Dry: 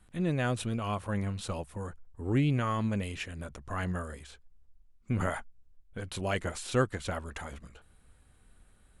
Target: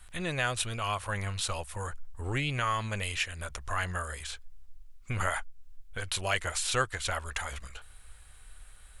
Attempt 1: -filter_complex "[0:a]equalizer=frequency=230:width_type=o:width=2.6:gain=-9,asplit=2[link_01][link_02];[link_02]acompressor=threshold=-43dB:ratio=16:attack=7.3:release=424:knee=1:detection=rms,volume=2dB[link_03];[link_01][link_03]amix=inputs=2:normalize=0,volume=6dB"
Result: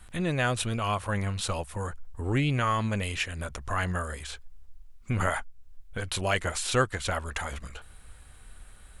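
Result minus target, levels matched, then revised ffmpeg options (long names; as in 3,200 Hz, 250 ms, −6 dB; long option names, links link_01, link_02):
250 Hz band +6.0 dB
-filter_complex "[0:a]equalizer=frequency=230:width_type=o:width=2.6:gain=-21,asplit=2[link_01][link_02];[link_02]acompressor=threshold=-43dB:ratio=16:attack=7.3:release=424:knee=1:detection=rms,volume=2dB[link_03];[link_01][link_03]amix=inputs=2:normalize=0,volume=6dB"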